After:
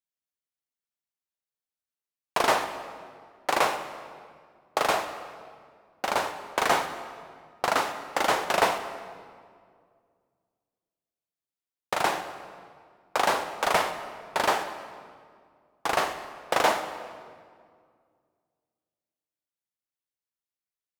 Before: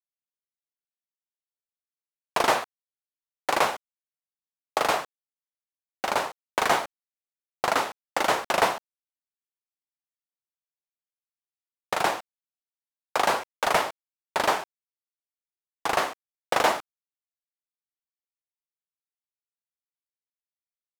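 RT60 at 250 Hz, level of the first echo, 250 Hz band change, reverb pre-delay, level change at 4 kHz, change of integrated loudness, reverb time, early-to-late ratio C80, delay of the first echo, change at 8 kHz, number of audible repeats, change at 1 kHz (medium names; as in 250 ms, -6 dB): 2.5 s, no echo, 0.0 dB, 25 ms, -0.5 dB, -1.0 dB, 2.0 s, 10.5 dB, no echo, -0.5 dB, no echo, -0.5 dB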